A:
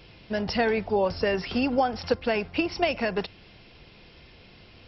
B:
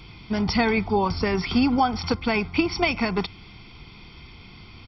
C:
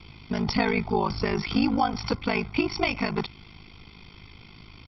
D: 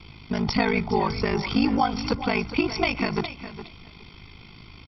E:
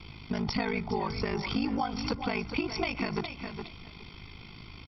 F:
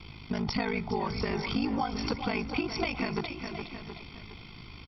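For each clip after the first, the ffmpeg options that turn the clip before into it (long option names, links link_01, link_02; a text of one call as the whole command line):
ffmpeg -i in.wav -af "aecho=1:1:0.9:0.78,volume=3.5dB" out.wav
ffmpeg -i in.wav -af "aeval=exprs='val(0)*sin(2*PI*26*n/s)':channel_layout=same" out.wav
ffmpeg -i in.wav -af "aecho=1:1:412|824:0.237|0.0356,volume=1.5dB" out.wav
ffmpeg -i in.wav -af "acompressor=threshold=-29dB:ratio=2.5,volume=-1dB" out.wav
ffmpeg -i in.wav -af "aecho=1:1:720:0.266" out.wav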